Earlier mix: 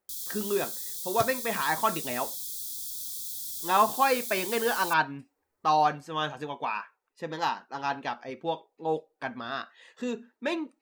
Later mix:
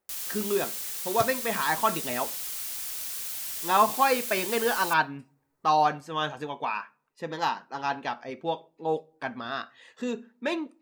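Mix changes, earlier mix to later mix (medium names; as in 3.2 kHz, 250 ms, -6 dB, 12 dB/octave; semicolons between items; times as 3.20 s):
first sound: remove brick-wall FIR band-stop 410–3200 Hz; reverb: on, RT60 0.50 s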